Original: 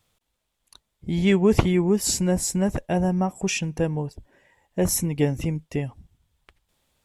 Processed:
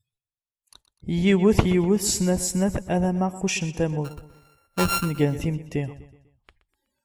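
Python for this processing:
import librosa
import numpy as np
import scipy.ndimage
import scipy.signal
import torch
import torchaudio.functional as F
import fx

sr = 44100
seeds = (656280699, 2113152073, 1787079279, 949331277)

y = fx.sample_sort(x, sr, block=32, at=(4.04, 5.04), fade=0.02)
y = fx.noise_reduce_blind(y, sr, reduce_db=28)
y = fx.echo_feedback(y, sr, ms=124, feedback_pct=44, wet_db=-15.5)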